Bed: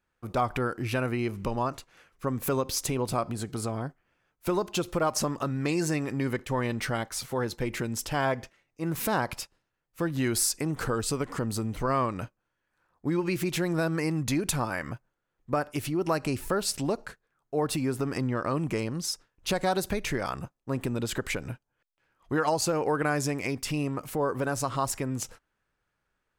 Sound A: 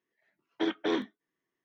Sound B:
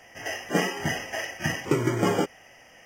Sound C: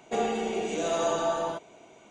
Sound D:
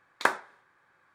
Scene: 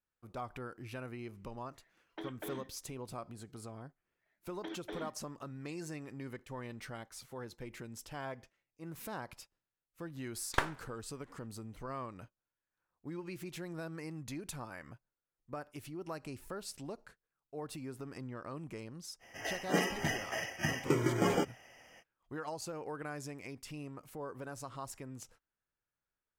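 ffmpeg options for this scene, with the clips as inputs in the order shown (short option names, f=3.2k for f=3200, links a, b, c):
-filter_complex "[1:a]asplit=2[a][b];[0:a]volume=-15.5dB[c];[a]acompressor=threshold=-41dB:ratio=6:attack=3.2:release=140:knee=1:detection=peak[d];[b]acompressor=threshold=-32dB:ratio=6:attack=3.2:release=140:knee=1:detection=peak[e];[4:a]aeval=exprs='if(lt(val(0),0),0.251*val(0),val(0))':c=same[f];[d]atrim=end=1.64,asetpts=PTS-STARTPTS,volume=-0.5dB,afade=t=in:d=0.004:c=hsin,afade=t=out:st=1.636:d=0.004:c=hsin,adelay=1580[g];[e]atrim=end=1.64,asetpts=PTS-STARTPTS,volume=-7dB,afade=t=in:d=0.004:c=hsin,afade=t=out:st=1.636:d=0.004:c=hsin,adelay=4040[h];[f]atrim=end=1.14,asetpts=PTS-STARTPTS,volume=-3.5dB,afade=t=in:d=0.004:c=hsin,afade=t=out:st=1.136:d=0.004:c=hsin,adelay=10330[i];[2:a]atrim=end=2.85,asetpts=PTS-STARTPTS,volume=-6.5dB,afade=t=in:d=0.05,afade=t=out:st=2.8:d=0.05,adelay=19190[j];[c][g][h][i][j]amix=inputs=5:normalize=0"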